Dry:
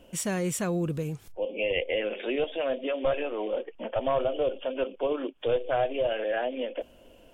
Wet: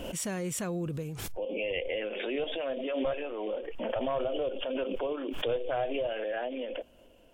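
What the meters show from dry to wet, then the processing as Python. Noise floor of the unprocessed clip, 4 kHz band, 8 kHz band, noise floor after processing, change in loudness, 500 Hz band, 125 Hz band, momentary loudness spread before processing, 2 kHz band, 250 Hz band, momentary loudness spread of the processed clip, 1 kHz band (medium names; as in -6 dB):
-55 dBFS, -1.0 dB, no reading, -58 dBFS, -4.0 dB, -4.0 dB, -4.5 dB, 7 LU, -3.5 dB, -2.5 dB, 5 LU, -4.5 dB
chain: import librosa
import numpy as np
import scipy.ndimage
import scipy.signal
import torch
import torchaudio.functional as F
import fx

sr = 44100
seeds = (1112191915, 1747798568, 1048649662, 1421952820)

y = fx.pre_swell(x, sr, db_per_s=27.0)
y = y * 10.0 ** (-5.5 / 20.0)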